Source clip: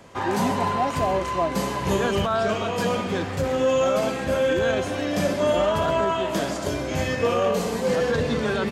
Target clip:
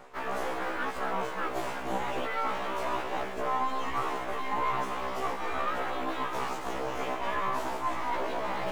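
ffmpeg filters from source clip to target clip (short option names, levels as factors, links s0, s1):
-filter_complex "[0:a]asplit=2[s0][s1];[s1]acrusher=bits=4:mix=0:aa=0.000001,volume=0.251[s2];[s0][s2]amix=inputs=2:normalize=0,equalizer=f=125:t=o:w=1:g=-4,equalizer=f=250:t=o:w=1:g=-7,equalizer=f=1000:t=o:w=1:g=-9,equalizer=f=2000:t=o:w=1:g=-7,equalizer=f=4000:t=o:w=1:g=-7,aeval=exprs='abs(val(0))':c=same,bass=f=250:g=-14,treble=f=4000:g=-15,areverse,acompressor=mode=upward:threshold=0.0708:ratio=2.5,areverse,afftfilt=real='re*1.73*eq(mod(b,3),0)':imag='im*1.73*eq(mod(b,3),0)':win_size=2048:overlap=0.75"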